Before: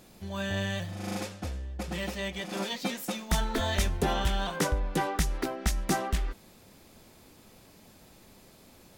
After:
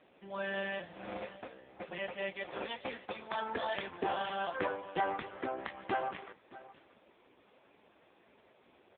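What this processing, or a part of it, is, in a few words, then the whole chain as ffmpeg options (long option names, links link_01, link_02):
satellite phone: -filter_complex "[0:a]asettb=1/sr,asplit=3[link_01][link_02][link_03];[link_01]atrim=end=2.484[link_04];[link_02]atrim=start=2.48:end=3.39,asetpts=PTS-STARTPTS,afade=type=in:duration=0.004:curve=qsin,afade=type=out:start_time=0.906:duration=0.004:curve=qsin,highpass=frequency=200:width=0.5412,highpass=frequency=200:width=1.3066[link_05];[link_03]atrim=start=3.386[link_06];[link_04][link_05]acrossfade=duration=0.004:curve1=hsin:curve2=qsin[link_07];[link_07][link_06]acrossfade=duration=0.004:curve1=qsin:curve2=hsin,highpass=370,lowpass=3200,aecho=1:1:616:0.133" -ar 8000 -c:a libopencore_amrnb -b:a 5150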